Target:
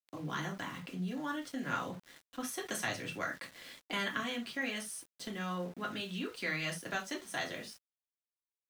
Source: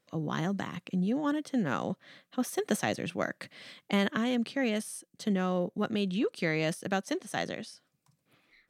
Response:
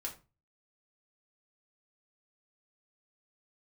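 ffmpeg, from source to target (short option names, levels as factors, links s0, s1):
-filter_complex "[0:a]acrossover=split=150|880|3800[s0][s1][s2][s3];[s1]acompressor=threshold=0.00794:ratio=5[s4];[s0][s4][s2][s3]amix=inputs=4:normalize=0[s5];[1:a]atrim=start_sample=2205,atrim=end_sample=3969[s6];[s5][s6]afir=irnorm=-1:irlink=0,aeval=exprs='val(0)*gte(abs(val(0)),0.00266)':c=same"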